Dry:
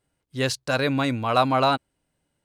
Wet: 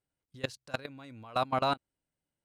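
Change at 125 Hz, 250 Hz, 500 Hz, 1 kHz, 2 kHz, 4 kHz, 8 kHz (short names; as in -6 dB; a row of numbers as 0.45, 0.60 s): -14.5, -15.5, -11.0, -10.0, -13.0, -11.5, -18.0 dB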